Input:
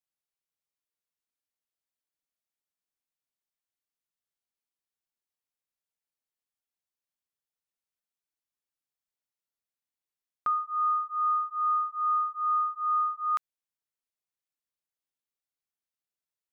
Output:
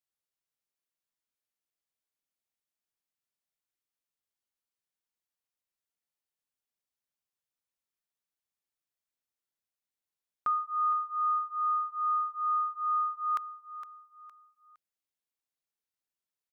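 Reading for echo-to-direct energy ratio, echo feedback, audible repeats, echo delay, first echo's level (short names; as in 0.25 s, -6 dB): -12.0 dB, 34%, 3, 0.462 s, -12.5 dB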